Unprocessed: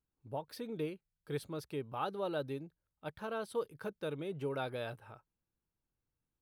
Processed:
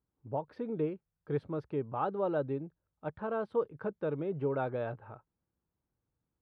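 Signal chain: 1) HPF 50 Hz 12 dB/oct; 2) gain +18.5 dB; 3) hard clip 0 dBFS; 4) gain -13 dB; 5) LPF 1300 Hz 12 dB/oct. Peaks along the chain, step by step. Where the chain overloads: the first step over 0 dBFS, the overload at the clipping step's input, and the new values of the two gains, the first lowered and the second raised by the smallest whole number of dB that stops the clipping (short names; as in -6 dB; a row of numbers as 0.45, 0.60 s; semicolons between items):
-23.5, -5.0, -5.0, -18.0, -20.5 dBFS; no overload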